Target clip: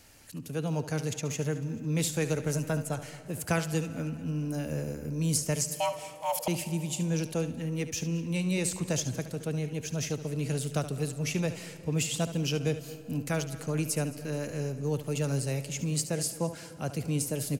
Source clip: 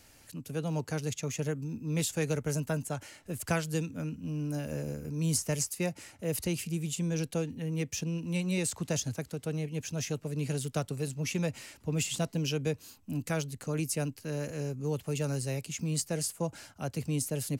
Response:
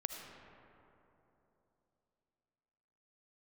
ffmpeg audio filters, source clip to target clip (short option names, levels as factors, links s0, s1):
-filter_complex "[0:a]asettb=1/sr,asplit=3[s0][s1][s2];[s0]atrim=end=5.744[s3];[s1]atrim=start=5.74:end=6.48,asetpts=PTS-STARTPTS,afade=t=in:d=0.004:c=qsin,afade=t=out:st=0.736:d=0.004:c=qsin,afreqshift=420[s4];[s2]atrim=start=6.476[s5];[s3][s4]acrossfade=d=0.004:c1=hsin:c2=qsin[s6];[s6][s5]acrossfade=d=0.004:c1=qsin:c2=hsin,aecho=1:1:218|436|654|872:0.0944|0.051|0.0275|0.0149,asplit=2[s7][s8];[1:a]atrim=start_sample=2205,adelay=72[s9];[s8][s9]afir=irnorm=-1:irlink=0,volume=0.282[s10];[s7][s10]amix=inputs=2:normalize=0,volume=1.19"